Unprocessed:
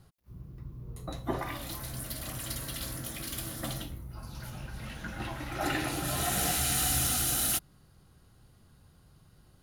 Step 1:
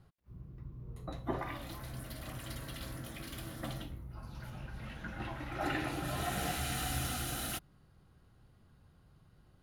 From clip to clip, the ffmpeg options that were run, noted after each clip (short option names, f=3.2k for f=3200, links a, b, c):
-af "bass=f=250:g=0,treble=f=4k:g=-10,volume=-3.5dB"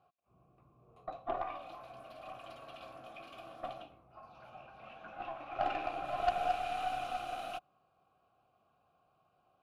-filter_complex "[0:a]asplit=3[a][b][c];[a]bandpass=f=730:t=q:w=8,volume=0dB[d];[b]bandpass=f=1.09k:t=q:w=8,volume=-6dB[e];[c]bandpass=f=2.44k:t=q:w=8,volume=-9dB[f];[d][e][f]amix=inputs=3:normalize=0,aeval=exprs='0.0376*(cos(1*acos(clip(val(0)/0.0376,-1,1)))-cos(1*PI/2))+0.00841*(cos(4*acos(clip(val(0)/0.0376,-1,1)))-cos(4*PI/2))+0.00668*(cos(6*acos(clip(val(0)/0.0376,-1,1)))-cos(6*PI/2))':c=same,volume=10dB"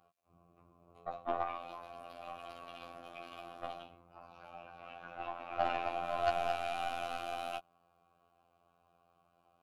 -af "afftfilt=real='hypot(re,im)*cos(PI*b)':imag='0':win_size=2048:overlap=0.75,volume=5dB"